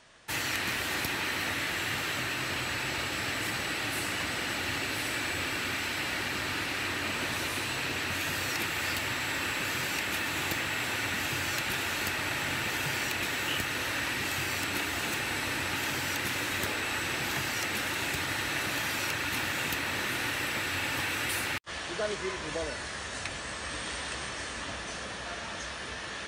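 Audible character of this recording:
background noise floor −39 dBFS
spectral slope −3.0 dB per octave

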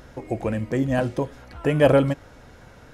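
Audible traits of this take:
background noise floor −48 dBFS
spectral slope −5.5 dB per octave

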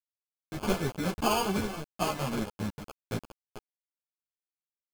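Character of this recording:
a quantiser's noise floor 6 bits, dither none
tremolo triangle 1.7 Hz, depth 35%
aliases and images of a low sample rate 1,900 Hz, jitter 0%
a shimmering, thickened sound

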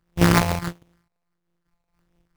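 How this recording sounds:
a buzz of ramps at a fixed pitch in blocks of 256 samples
phaser sweep stages 4, 1.5 Hz, lowest notch 320–1,200 Hz
aliases and images of a low sample rate 3,200 Hz, jitter 20%
amplitude modulation by smooth noise

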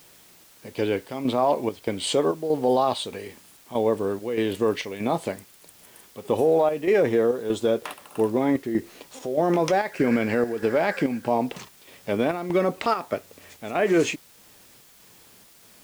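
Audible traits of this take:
chopped level 1.6 Hz, depth 60%, duty 70%
a quantiser's noise floor 10 bits, dither triangular

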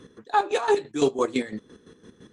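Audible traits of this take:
chopped level 5.9 Hz, depth 65%, duty 40%
MP3

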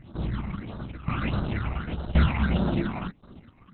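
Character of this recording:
aliases and images of a low sample rate 7,500 Hz, jitter 0%
tremolo saw down 0.93 Hz, depth 85%
phaser sweep stages 8, 1.6 Hz, lowest notch 450–2,300 Hz
Opus

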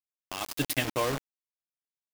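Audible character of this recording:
sample-and-hold tremolo 3.9 Hz, depth 70%
a quantiser's noise floor 6 bits, dither none

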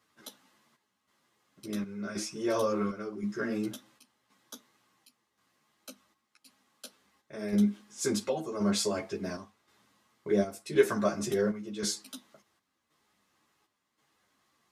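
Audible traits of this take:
chopped level 0.93 Hz, depth 60%, duty 70%
a shimmering, thickened sound

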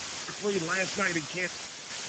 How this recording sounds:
phaser sweep stages 4, 2.5 Hz, lowest notch 690–1,500 Hz
a quantiser's noise floor 6 bits, dither triangular
sample-and-hold tremolo 4.2 Hz
Speex

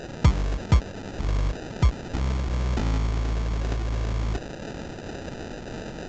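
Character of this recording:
a quantiser's noise floor 6 bits, dither triangular
phaser sweep stages 12, 1.5 Hz, lowest notch 390–1,100 Hz
aliases and images of a low sample rate 1,100 Hz, jitter 0%
mu-law

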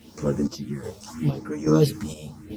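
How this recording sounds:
phaser sweep stages 4, 0.8 Hz, lowest notch 280–3,900 Hz
a quantiser's noise floor 10 bits, dither none
chopped level 1.2 Hz, depth 60%, duty 55%
a shimmering, thickened sound

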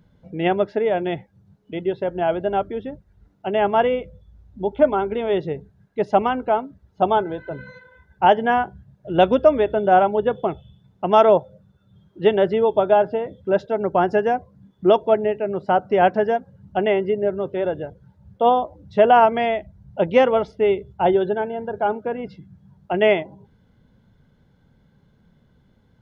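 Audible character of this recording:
background noise floor −60 dBFS
spectral slope −4.0 dB per octave

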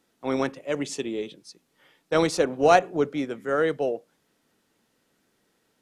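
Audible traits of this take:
background noise floor −71 dBFS
spectral slope −4.5 dB per octave

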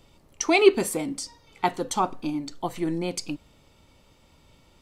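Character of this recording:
background noise floor −59 dBFS
spectral slope −3.5 dB per octave

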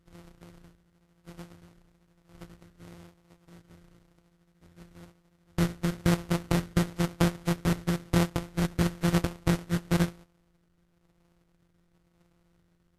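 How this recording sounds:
a buzz of ramps at a fixed pitch in blocks of 256 samples
phaser sweep stages 4, 1 Hz, lowest notch 800–2,000 Hz
aliases and images of a low sample rate 1,700 Hz, jitter 20%
Ogg Vorbis

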